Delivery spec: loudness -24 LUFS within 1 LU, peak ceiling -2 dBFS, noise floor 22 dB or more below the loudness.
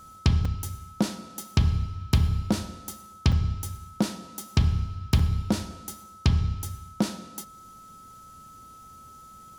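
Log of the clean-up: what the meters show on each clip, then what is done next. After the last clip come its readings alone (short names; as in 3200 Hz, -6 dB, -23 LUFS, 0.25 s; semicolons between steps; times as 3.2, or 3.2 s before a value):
dropouts 3; longest dropout 3.8 ms; steady tone 1300 Hz; tone level -46 dBFS; loudness -28.0 LUFS; peak -8.0 dBFS; loudness target -24.0 LUFS
-> interpolate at 0.45/3.32/5.19, 3.8 ms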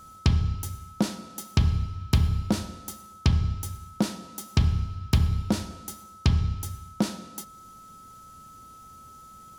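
dropouts 0; steady tone 1300 Hz; tone level -46 dBFS
-> notch 1300 Hz, Q 30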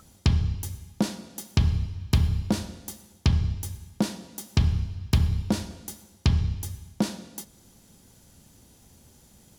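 steady tone none; loudness -28.0 LUFS; peak -8.0 dBFS; loudness target -24.0 LUFS
-> gain +4 dB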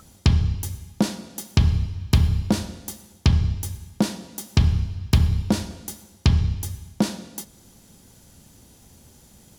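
loudness -24.0 LUFS; peak -4.0 dBFS; noise floor -52 dBFS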